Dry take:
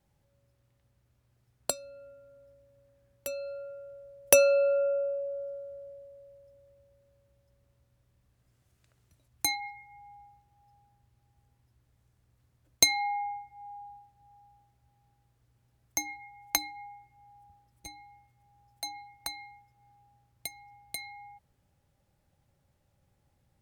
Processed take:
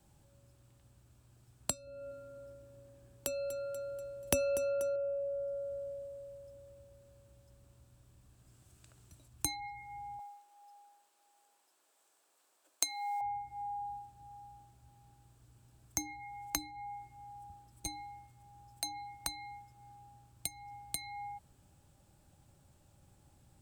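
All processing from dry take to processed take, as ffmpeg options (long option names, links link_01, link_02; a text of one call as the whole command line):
ffmpeg -i in.wav -filter_complex "[0:a]asettb=1/sr,asplit=3[link_01][link_02][link_03];[link_01]atrim=end=1.874[link_04];[link_02]atrim=start=1.87:end=4.96,asetpts=PTS-STARTPTS,afade=type=in:duration=0.004:curve=qsin,afade=type=out:start_time=3.086:duration=0.004:curve=qsin,equalizer=frequency=380:width=1.3:gain=5.5,aecho=1:1:242|484|726|968:0.178|0.0747|0.0314|0.0132,atrim=end_sample=136269[link_05];[link_03]atrim=start=4.956[link_06];[link_04][link_05]acrossfade=duration=0.004:curve1=hsin:curve2=qsin[link_07];[link_07][link_06]acrossfade=duration=0.004:curve1=qsin:curve2=hsin,asettb=1/sr,asplit=3[link_08][link_09][link_10];[link_08]atrim=end=10.194[link_11];[link_09]atrim=start=10.19:end=13.21,asetpts=PTS-STARTPTS,afade=type=in:duration=0.004:curve=qsin,afade=type=out:start_time=3.016:duration=0.004:curve=qsin,acrusher=bits=8:mode=log:mix=0:aa=0.000001,highpass=frequency=460:width=0.5412,highpass=frequency=460:width=1.3066[link_12];[link_10]atrim=start=13.206[link_13];[link_11][link_12]acrossfade=duration=0.004:curve1=hsin:curve2=qsin[link_14];[link_14][link_13]acrossfade=duration=0.004:curve1=qsin:curve2=hsin,equalizer=frequency=315:width_type=o:width=0.33:gain=4,equalizer=frequency=500:width_type=o:width=0.33:gain=-5,equalizer=frequency=2000:width_type=o:width=0.33:gain=-7,equalizer=frequency=8000:width_type=o:width=0.33:gain=9,acrossover=split=220[link_15][link_16];[link_16]acompressor=threshold=-45dB:ratio=3[link_17];[link_15][link_17]amix=inputs=2:normalize=0,volume=7dB" out.wav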